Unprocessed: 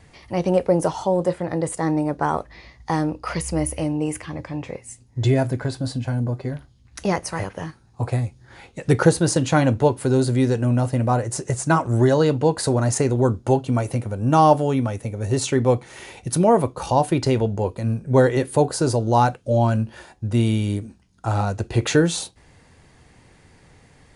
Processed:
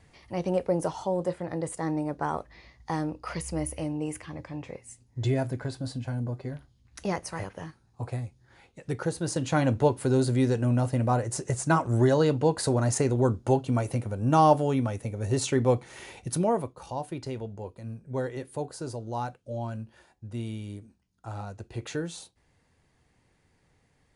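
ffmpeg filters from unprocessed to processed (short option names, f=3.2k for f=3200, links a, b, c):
-af "volume=2dB,afade=t=out:st=7.44:d=1.61:silence=0.446684,afade=t=in:st=9.05:d=0.75:silence=0.316228,afade=t=out:st=16.15:d=0.61:silence=0.298538"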